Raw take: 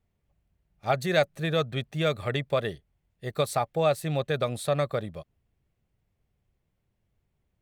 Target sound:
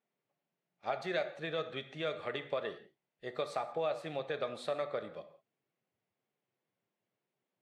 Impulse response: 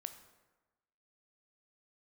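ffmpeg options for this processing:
-filter_complex "[0:a]acompressor=threshold=-28dB:ratio=3,highpass=310,lowpass=4200[link_01];[1:a]atrim=start_sample=2205,afade=type=out:start_time=0.24:duration=0.01,atrim=end_sample=11025[link_02];[link_01][link_02]afir=irnorm=-1:irlink=0" -ar 44100 -c:a libvorbis -b:a 64k

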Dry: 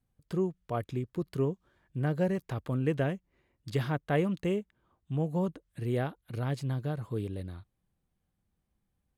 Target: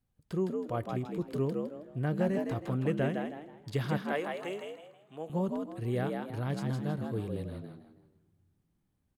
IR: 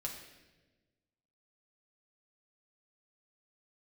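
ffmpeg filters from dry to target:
-filter_complex "[0:a]asettb=1/sr,asplit=3[link_01][link_02][link_03];[link_01]atrim=end=3.994[link_04];[link_02]atrim=start=3.99:end=5.3,asetpts=PTS-STARTPTS,afade=type=in:duration=0.004:curve=qsin,afade=type=out:start_time=1.306:duration=0.004:curve=qsin,highpass=510[link_05];[link_03]atrim=start=5.296[link_06];[link_04][link_05]acrossfade=duration=0.004:curve1=hsin:curve2=qsin[link_07];[link_07][link_06]acrossfade=duration=0.004:curve1=qsin:curve2=hsin,asplit=5[link_08][link_09][link_10][link_11][link_12];[link_09]adelay=160,afreqshift=73,volume=-4.5dB[link_13];[link_10]adelay=320,afreqshift=146,volume=-14.4dB[link_14];[link_11]adelay=480,afreqshift=219,volume=-24.3dB[link_15];[link_12]adelay=640,afreqshift=292,volume=-34.2dB[link_16];[link_08][link_13][link_14][link_15][link_16]amix=inputs=5:normalize=0,asplit=2[link_17][link_18];[1:a]atrim=start_sample=2205,asetrate=24255,aresample=44100[link_19];[link_18][link_19]afir=irnorm=-1:irlink=0,volume=-19.5dB[link_20];[link_17][link_20]amix=inputs=2:normalize=0,volume=-2.5dB"

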